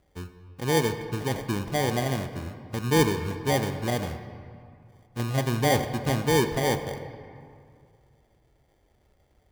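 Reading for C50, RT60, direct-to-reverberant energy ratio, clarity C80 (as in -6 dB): 9.0 dB, 2.2 s, 7.5 dB, 10.0 dB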